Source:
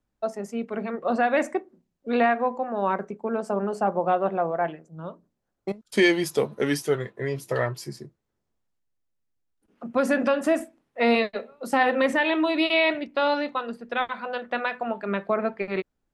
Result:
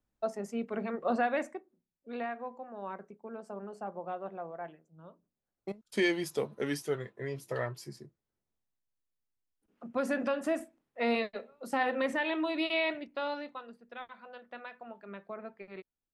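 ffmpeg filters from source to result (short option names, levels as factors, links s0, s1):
-af "volume=1.26,afade=t=out:st=1.11:d=0.47:silence=0.281838,afade=t=in:st=5.07:d=0.64:silence=0.446684,afade=t=out:st=12.78:d=1.02:silence=0.354813"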